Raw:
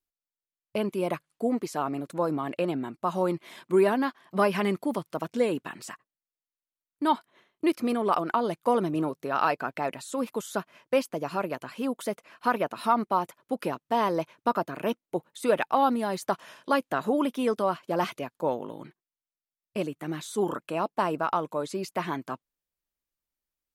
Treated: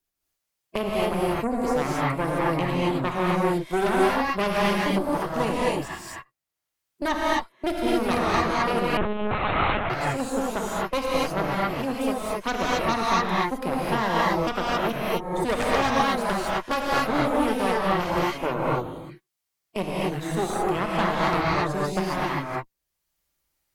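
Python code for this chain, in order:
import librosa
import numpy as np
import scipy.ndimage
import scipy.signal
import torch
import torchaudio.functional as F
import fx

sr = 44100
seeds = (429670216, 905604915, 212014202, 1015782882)

y = fx.spec_quant(x, sr, step_db=15)
y = fx.cheby_harmonics(y, sr, harmonics=(6,), levels_db=(-10,), full_scale_db=-11.0)
y = fx.rev_gated(y, sr, seeds[0], gate_ms=290, shape='rising', drr_db=-6.0)
y = fx.lpc_monotone(y, sr, seeds[1], pitch_hz=210.0, order=10, at=(8.97, 9.9))
y = fx.band_squash(y, sr, depth_pct=40)
y = F.gain(torch.from_numpy(y), -5.0).numpy()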